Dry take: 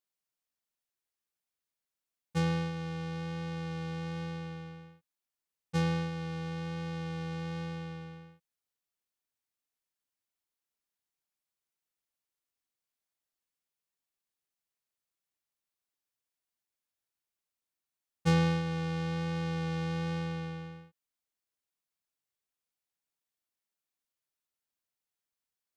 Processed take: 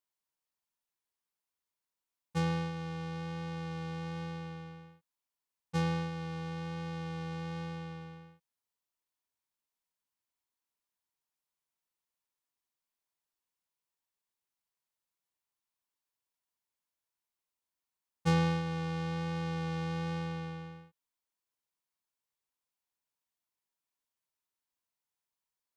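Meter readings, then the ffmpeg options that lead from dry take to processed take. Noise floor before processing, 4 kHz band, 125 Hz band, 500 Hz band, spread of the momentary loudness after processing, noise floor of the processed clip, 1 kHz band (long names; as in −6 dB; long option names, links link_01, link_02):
below −85 dBFS, −2.0 dB, −2.0 dB, −2.0 dB, 13 LU, below −85 dBFS, +0.5 dB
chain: -af "equalizer=frequency=970:width_type=o:width=0.31:gain=8,volume=-2dB"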